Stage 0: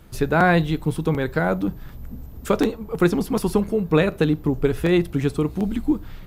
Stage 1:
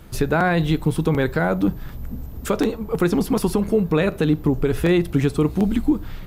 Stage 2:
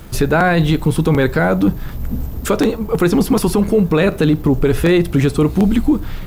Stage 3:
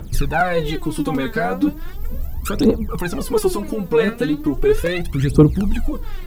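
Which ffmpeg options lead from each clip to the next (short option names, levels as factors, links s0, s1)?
-af "alimiter=limit=0.224:level=0:latency=1:release=103,volume=1.68"
-af "apsyclip=4.73,dynaudnorm=f=130:g=5:m=3.76,acrusher=bits=8:dc=4:mix=0:aa=0.000001,volume=0.531"
-af "aphaser=in_gain=1:out_gain=1:delay=4.6:decay=0.8:speed=0.37:type=triangular,volume=0.376"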